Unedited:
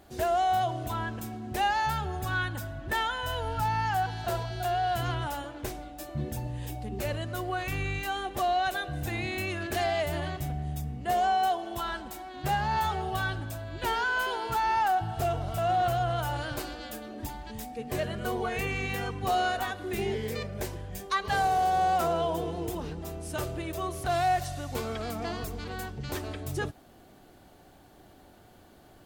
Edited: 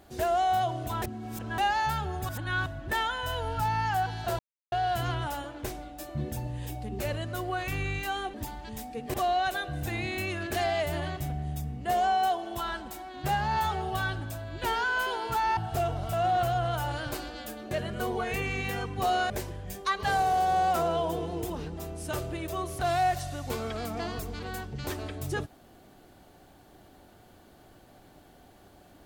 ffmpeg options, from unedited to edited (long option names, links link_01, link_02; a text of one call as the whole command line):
ffmpeg -i in.wav -filter_complex "[0:a]asplit=12[link_01][link_02][link_03][link_04][link_05][link_06][link_07][link_08][link_09][link_10][link_11][link_12];[link_01]atrim=end=1.022[link_13];[link_02]atrim=start=1.018:end=1.582,asetpts=PTS-STARTPTS,areverse[link_14];[link_03]atrim=start=1.578:end=2.292[link_15];[link_04]atrim=start=2.288:end=2.662,asetpts=PTS-STARTPTS,areverse[link_16];[link_05]atrim=start=2.658:end=4.39,asetpts=PTS-STARTPTS,afade=type=out:start_time=1.728:duration=0.004:curve=hsin[link_17];[link_06]atrim=start=4.39:end=4.72,asetpts=PTS-STARTPTS,volume=0[link_18];[link_07]atrim=start=4.72:end=8.342,asetpts=PTS-STARTPTS,afade=type=in:duration=0.004:curve=hsin[link_19];[link_08]atrim=start=17.158:end=17.962[link_20];[link_09]atrim=start=8.338:end=14.772[link_21];[link_10]atrim=start=15.018:end=17.162[link_22];[link_11]atrim=start=17.958:end=19.552[link_23];[link_12]atrim=start=20.548[link_24];[link_13][link_14]acrossfade=duration=0.004:curve1=hsin:curve2=hsin[link_25];[link_25][link_15]acrossfade=duration=0.004:curve1=hsin:curve2=hsin[link_26];[link_26][link_16]acrossfade=duration=0.004:curve1=hsin:curve2=hsin[link_27];[link_17][link_18][link_19]concat=n=3:v=0:a=1[link_28];[link_27][link_28]acrossfade=duration=0.004:curve1=hsin:curve2=hsin[link_29];[link_29][link_20]acrossfade=duration=0.004:curve1=hsin:curve2=hsin[link_30];[link_30][link_21]acrossfade=duration=0.004:curve1=hsin:curve2=hsin[link_31];[link_31][link_22]acrossfade=duration=0.004:curve1=hsin:curve2=hsin[link_32];[link_32][link_23]acrossfade=duration=0.004:curve1=hsin:curve2=hsin[link_33];[link_33][link_24]acrossfade=duration=0.004:curve1=hsin:curve2=hsin" out.wav